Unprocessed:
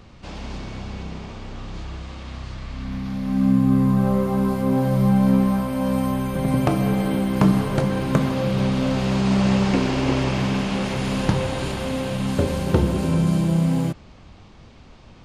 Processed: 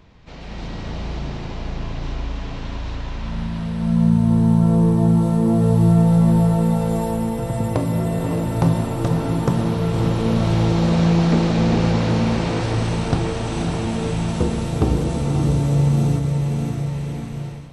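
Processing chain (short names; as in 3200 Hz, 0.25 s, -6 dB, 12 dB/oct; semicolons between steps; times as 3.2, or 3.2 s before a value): diffused feedback echo 0.493 s, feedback 47%, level -4 dB; AGC gain up to 8 dB; dynamic EQ 2500 Hz, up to -6 dB, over -38 dBFS, Q 1.4; varispeed -14%; gain -4 dB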